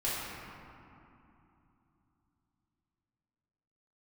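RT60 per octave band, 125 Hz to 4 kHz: 4.3, 4.0, 2.8, 3.0, 2.3, 1.4 seconds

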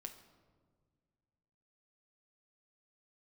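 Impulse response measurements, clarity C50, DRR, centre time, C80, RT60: 10.5 dB, 5.5 dB, 14 ms, 12.5 dB, 1.7 s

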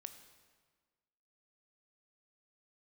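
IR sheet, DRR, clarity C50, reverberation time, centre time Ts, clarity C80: 8.5 dB, 10.0 dB, 1.5 s, 16 ms, 11.5 dB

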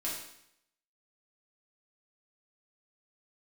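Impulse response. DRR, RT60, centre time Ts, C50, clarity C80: −6.5 dB, 0.75 s, 50 ms, 3.0 dB, 6.0 dB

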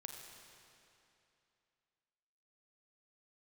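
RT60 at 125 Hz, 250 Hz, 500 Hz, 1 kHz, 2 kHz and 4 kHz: 2.8, 2.8, 2.8, 2.8, 2.7, 2.5 seconds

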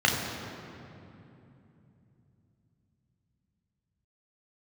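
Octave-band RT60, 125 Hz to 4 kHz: 5.3, 4.5, 3.1, 2.7, 2.3, 1.7 seconds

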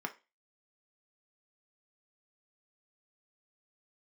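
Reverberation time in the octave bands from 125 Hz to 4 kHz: 0.15, 0.30, 0.30, 0.25, 0.30, 0.30 seconds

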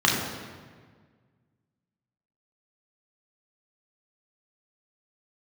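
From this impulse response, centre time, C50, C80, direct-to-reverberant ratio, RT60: 67 ms, 2.5 dB, 4.5 dB, −3.0 dB, 1.6 s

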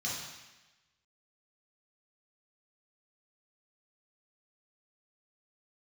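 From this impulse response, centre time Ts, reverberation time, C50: 72 ms, 1.1 s, 0.5 dB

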